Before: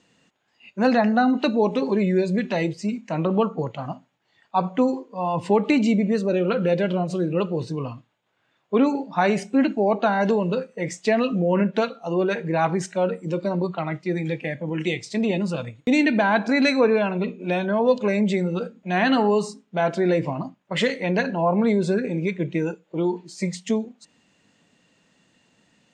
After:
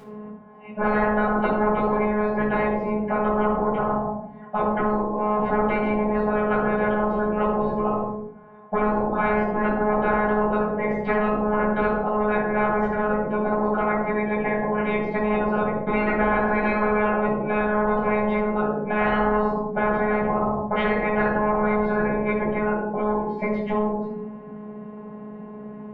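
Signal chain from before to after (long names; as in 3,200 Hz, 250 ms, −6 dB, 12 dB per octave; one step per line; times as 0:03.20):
spectral tilt +1.5 dB per octave
in parallel at −0.5 dB: brickwall limiter −14 dBFS, peak gain reduction 7 dB
on the sum: soft clipping −11.5 dBFS, distortion −16 dB
transistor ladder low-pass 960 Hz, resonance 35%
phases set to zero 211 Hz
notch comb filter 310 Hz
rectangular room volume 820 cubic metres, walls furnished, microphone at 7.8 metres
every bin compressed towards the loudest bin 4 to 1
level −5 dB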